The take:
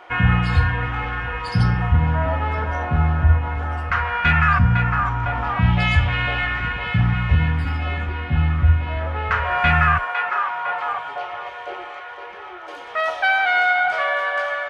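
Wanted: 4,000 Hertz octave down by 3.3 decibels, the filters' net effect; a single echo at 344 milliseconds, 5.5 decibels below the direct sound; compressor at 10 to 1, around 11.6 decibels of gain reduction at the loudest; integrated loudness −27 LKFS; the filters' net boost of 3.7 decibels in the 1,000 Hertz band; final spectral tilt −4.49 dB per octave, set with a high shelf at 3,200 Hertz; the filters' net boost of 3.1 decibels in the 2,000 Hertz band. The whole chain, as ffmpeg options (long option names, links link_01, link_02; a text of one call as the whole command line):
ffmpeg -i in.wav -af "equalizer=frequency=1000:width_type=o:gain=4.5,equalizer=frequency=2000:width_type=o:gain=4.5,highshelf=frequency=3200:gain=-4,equalizer=frequency=4000:width_type=o:gain=-5.5,acompressor=threshold=-22dB:ratio=10,aecho=1:1:344:0.531,volume=-2dB" out.wav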